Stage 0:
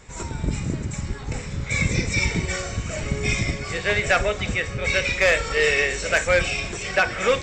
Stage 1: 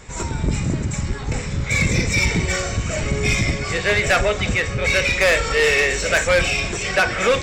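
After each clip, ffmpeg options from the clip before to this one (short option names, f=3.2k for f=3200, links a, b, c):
-af "asoftclip=type=tanh:threshold=-17dB,volume=6dB"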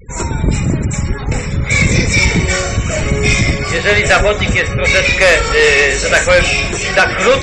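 -af "afftfilt=real='re*gte(hypot(re,im),0.0178)':imag='im*gte(hypot(re,im),0.0178)':win_size=1024:overlap=0.75,volume=7dB"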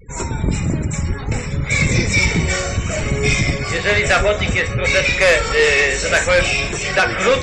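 -af "flanger=delay=6.7:depth=6.3:regen=73:speed=0.59:shape=sinusoidal"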